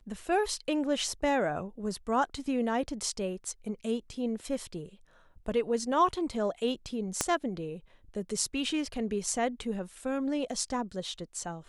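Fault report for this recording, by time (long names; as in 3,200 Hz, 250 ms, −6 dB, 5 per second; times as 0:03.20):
0:07.21: click −11 dBFS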